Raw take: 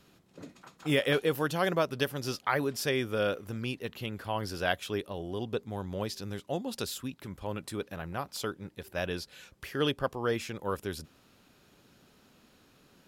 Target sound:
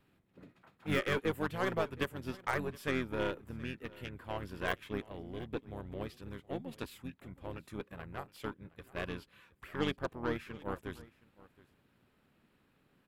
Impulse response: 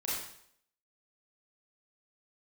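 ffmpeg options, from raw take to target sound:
-filter_complex "[0:a]firequalizer=gain_entry='entry(250,0);entry(960,-3);entry(1900,2);entry(4100,-7);entry(6700,-17);entry(11000,-5)':delay=0.05:min_phase=1,aeval=exprs='0.178*(cos(1*acos(clip(val(0)/0.178,-1,1)))-cos(1*PI/2))+0.01*(cos(5*acos(clip(val(0)/0.178,-1,1)))-cos(5*PI/2))+0.00708*(cos(6*acos(clip(val(0)/0.178,-1,1)))-cos(6*PI/2))+0.0158*(cos(7*acos(clip(val(0)/0.178,-1,1)))-cos(7*PI/2))':c=same,asplit=2[s0][s1];[s1]asetrate=29433,aresample=44100,atempo=1.49831,volume=0.631[s2];[s0][s2]amix=inputs=2:normalize=0,aecho=1:1:719:0.0841,volume=0.501"

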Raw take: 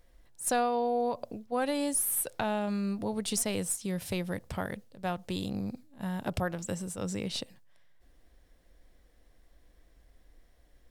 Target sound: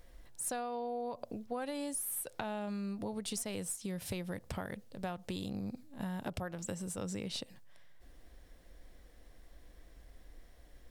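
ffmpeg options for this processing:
-af "acompressor=threshold=0.00794:ratio=5,volume=1.68"

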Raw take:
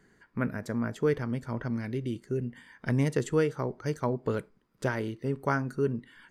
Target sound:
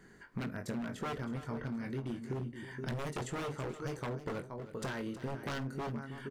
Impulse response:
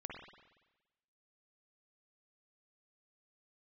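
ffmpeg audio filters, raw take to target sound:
-filter_complex "[0:a]asplit=2[s0][s1];[s1]adelay=22,volume=0.531[s2];[s0][s2]amix=inputs=2:normalize=0,asplit=2[s3][s4];[s4]aecho=0:1:473:0.188[s5];[s3][s5]amix=inputs=2:normalize=0,aeval=exprs='0.0596*(abs(mod(val(0)/0.0596+3,4)-2)-1)':c=same,acompressor=threshold=0.00891:ratio=4,asplit=2[s6][s7];[s7]aecho=0:1:49|319:0.1|0.224[s8];[s6][s8]amix=inputs=2:normalize=0,volume=1.41"

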